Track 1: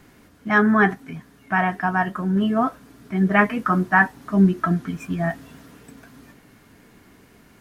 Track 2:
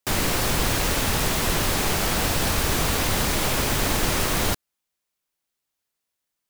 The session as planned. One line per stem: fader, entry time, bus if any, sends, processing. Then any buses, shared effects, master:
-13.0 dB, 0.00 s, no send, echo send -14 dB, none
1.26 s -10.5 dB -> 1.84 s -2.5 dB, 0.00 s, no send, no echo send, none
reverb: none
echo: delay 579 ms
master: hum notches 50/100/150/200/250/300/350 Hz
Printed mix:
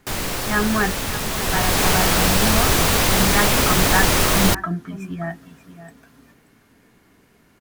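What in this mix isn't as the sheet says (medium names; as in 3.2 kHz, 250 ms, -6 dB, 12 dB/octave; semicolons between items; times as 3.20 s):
stem 1 -13.0 dB -> -4.0 dB; stem 2 -10.5 dB -> -2.0 dB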